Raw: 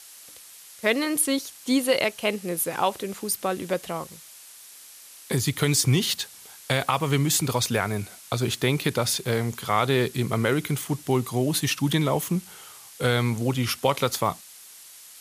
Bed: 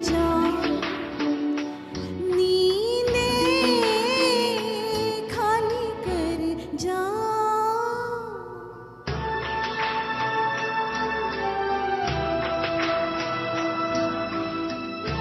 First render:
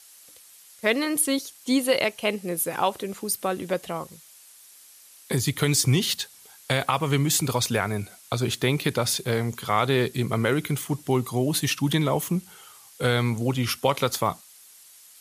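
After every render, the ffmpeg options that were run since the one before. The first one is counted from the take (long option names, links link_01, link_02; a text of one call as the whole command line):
ffmpeg -i in.wav -af "afftdn=noise_reduction=6:noise_floor=-47" out.wav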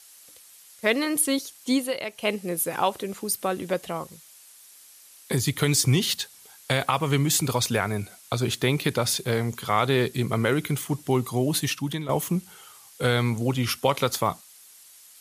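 ffmpeg -i in.wav -filter_complex "[0:a]asplit=4[link_01][link_02][link_03][link_04];[link_01]atrim=end=1.95,asetpts=PTS-STARTPTS,afade=type=out:start_time=1.71:duration=0.24:silence=0.354813[link_05];[link_02]atrim=start=1.95:end=2.05,asetpts=PTS-STARTPTS,volume=-9dB[link_06];[link_03]atrim=start=2.05:end=12.09,asetpts=PTS-STARTPTS,afade=type=in:duration=0.24:silence=0.354813,afade=type=out:start_time=9.5:duration=0.54:silence=0.237137[link_07];[link_04]atrim=start=12.09,asetpts=PTS-STARTPTS,afade=type=in:duration=0.004:curve=hsin:silence=0.237137[link_08];[link_05][link_06][link_07][link_08]concat=n=4:v=0:a=1" out.wav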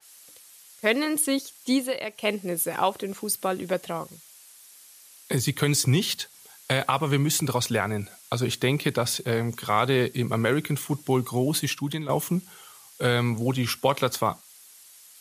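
ffmpeg -i in.wav -af "highpass=84,adynamicequalizer=threshold=0.0158:dfrequency=2700:dqfactor=0.7:tfrequency=2700:tqfactor=0.7:attack=5:release=100:ratio=0.375:range=1.5:mode=cutabove:tftype=highshelf" out.wav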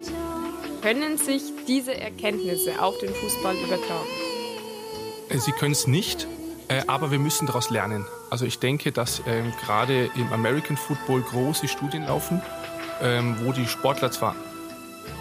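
ffmpeg -i in.wav -i bed.wav -filter_complex "[1:a]volume=-9dB[link_01];[0:a][link_01]amix=inputs=2:normalize=0" out.wav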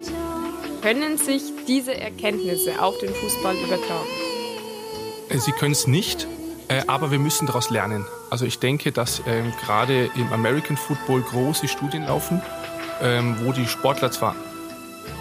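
ffmpeg -i in.wav -af "volume=2.5dB" out.wav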